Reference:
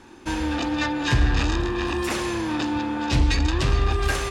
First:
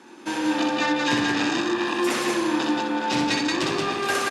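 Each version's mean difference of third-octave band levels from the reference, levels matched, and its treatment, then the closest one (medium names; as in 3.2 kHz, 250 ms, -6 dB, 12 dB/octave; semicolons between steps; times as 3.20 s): 4.0 dB: high-pass 190 Hz 24 dB/octave; on a send: multi-tap echo 62/178 ms -3.5/-3 dB; on the sum: resampled via 32 kHz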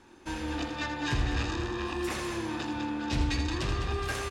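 1.5 dB: hum notches 60/120/180/240/300 Hz; loudspeakers at several distances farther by 28 m -8 dB, 70 m -8 dB; trim -8.5 dB; Opus 96 kbps 48 kHz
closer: second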